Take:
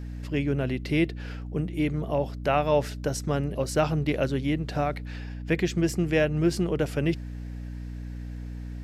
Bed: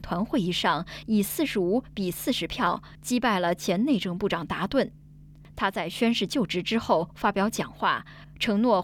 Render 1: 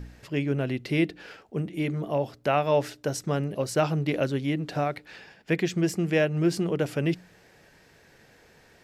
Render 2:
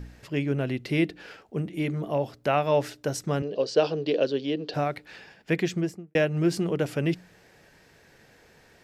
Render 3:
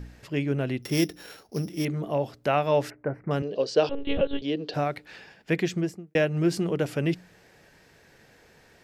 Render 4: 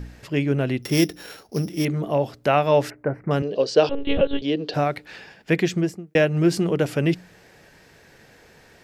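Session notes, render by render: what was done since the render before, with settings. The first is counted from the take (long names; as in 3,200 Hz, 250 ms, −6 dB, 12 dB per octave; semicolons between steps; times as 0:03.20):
hum removal 60 Hz, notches 5
0:03.42–0:04.74: loudspeaker in its box 260–5,600 Hz, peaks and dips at 460 Hz +10 dB, 860 Hz −4 dB, 1,300 Hz −7 dB, 2,100 Hz −9 dB, 3,100 Hz +5 dB, 4,600 Hz +8 dB; 0:05.66–0:06.15: fade out and dull
0:00.82–0:01.85: samples sorted by size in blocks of 8 samples; 0:02.90–0:03.31: elliptic low-pass filter 2,200 Hz; 0:03.89–0:04.42: one-pitch LPC vocoder at 8 kHz 280 Hz
level +5 dB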